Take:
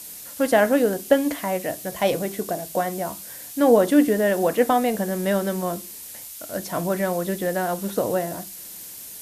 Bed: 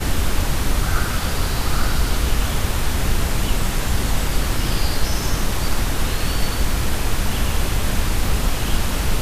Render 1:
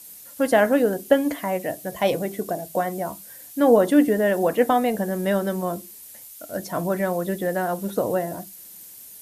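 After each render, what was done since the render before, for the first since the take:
broadband denoise 8 dB, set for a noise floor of −39 dBFS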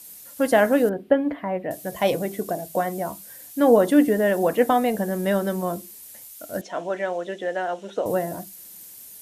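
0:00.89–0:01.71: high-frequency loss of the air 480 metres
0:06.61–0:08.06: loudspeaker in its box 420–6,100 Hz, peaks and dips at 1,100 Hz −6 dB, 3,000 Hz +7 dB, 4,700 Hz −9 dB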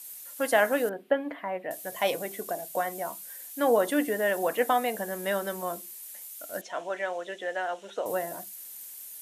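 high-pass filter 1,000 Hz 6 dB per octave
parametric band 5,000 Hz −3 dB 0.77 octaves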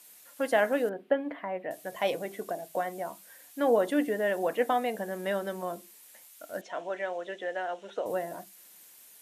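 low-pass filter 2,900 Hz 6 dB per octave
dynamic equaliser 1,200 Hz, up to −4 dB, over −38 dBFS, Q 1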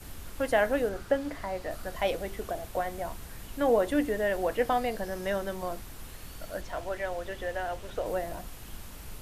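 mix in bed −24 dB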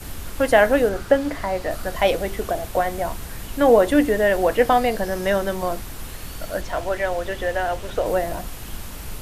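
level +10 dB

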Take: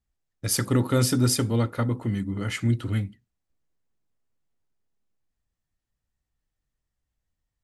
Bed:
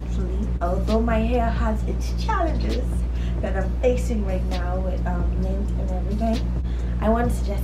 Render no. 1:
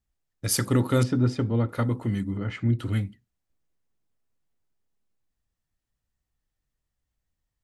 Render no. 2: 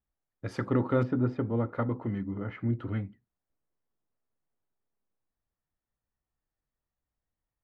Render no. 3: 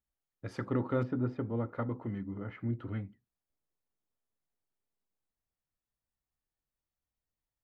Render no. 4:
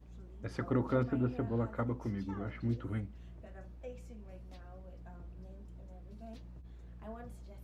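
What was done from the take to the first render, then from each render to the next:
0:01.03–0:01.69: head-to-tape spacing loss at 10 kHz 31 dB; 0:02.37–0:02.79: head-to-tape spacing loss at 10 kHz 28 dB
low-pass filter 1,400 Hz 12 dB per octave; low-shelf EQ 220 Hz −9 dB
level −5 dB
mix in bed −26.5 dB

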